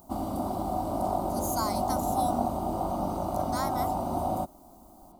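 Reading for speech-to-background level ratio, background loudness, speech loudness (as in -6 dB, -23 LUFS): -4.5 dB, -30.5 LUFS, -35.0 LUFS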